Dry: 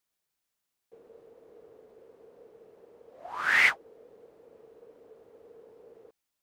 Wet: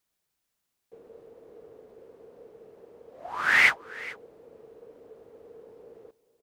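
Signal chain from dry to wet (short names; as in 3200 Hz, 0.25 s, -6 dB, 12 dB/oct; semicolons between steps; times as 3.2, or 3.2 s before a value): low shelf 330 Hz +4 dB; on a send: echo 0.432 s -19.5 dB; on the sum: gain +2.5 dB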